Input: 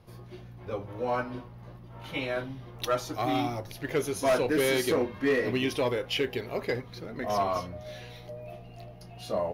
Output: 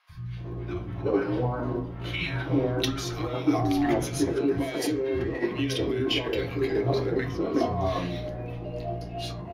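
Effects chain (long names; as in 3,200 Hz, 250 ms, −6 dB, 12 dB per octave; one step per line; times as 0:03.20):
low-pass filter 4,000 Hz 6 dB per octave
compressor whose output falls as the input rises −34 dBFS, ratio −1
three-band delay without the direct sound highs, lows, mids 90/370 ms, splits 170/1,300 Hz
on a send at −3 dB: convolution reverb RT60 0.40 s, pre-delay 3 ms
on the sum: one half of a high-frequency compander decoder only
level +4.5 dB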